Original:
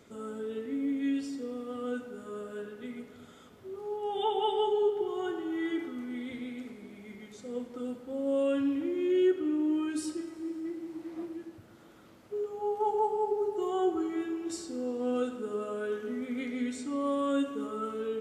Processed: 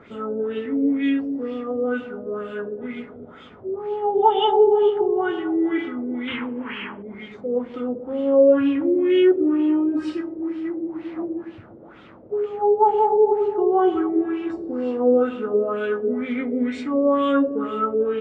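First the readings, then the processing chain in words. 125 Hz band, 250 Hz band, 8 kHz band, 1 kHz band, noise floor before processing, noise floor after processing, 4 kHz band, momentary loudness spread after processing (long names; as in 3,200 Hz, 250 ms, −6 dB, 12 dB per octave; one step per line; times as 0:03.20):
can't be measured, +10.0 dB, below −10 dB, +12.0 dB, −55 dBFS, −44 dBFS, +8.5 dB, 14 LU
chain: sound drawn into the spectrogram noise, 0:06.27–0:07.03, 820–3,300 Hz −47 dBFS
auto-filter low-pass sine 2.1 Hz 480–3,100 Hz
level +9 dB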